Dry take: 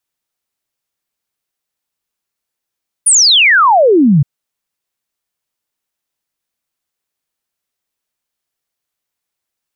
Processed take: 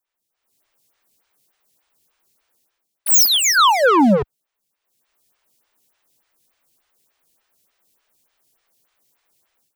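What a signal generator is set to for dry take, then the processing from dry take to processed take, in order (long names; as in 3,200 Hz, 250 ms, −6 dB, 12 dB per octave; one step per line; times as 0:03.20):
exponential sine sweep 10,000 Hz → 130 Hz 1.17 s −5 dBFS
automatic gain control gain up to 16 dB
wave folding −5.5 dBFS
phaser with staggered stages 3.4 Hz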